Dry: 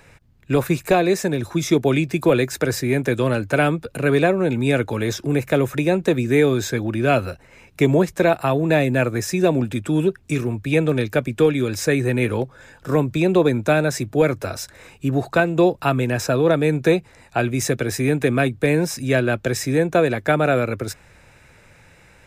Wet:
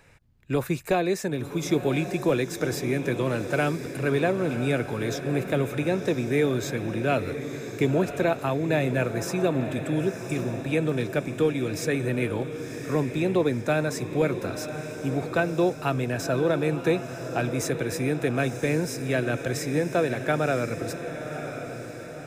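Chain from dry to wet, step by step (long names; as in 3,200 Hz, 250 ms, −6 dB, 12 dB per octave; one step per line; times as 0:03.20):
feedback delay with all-pass diffusion 1,016 ms, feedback 52%, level −9 dB
level −7 dB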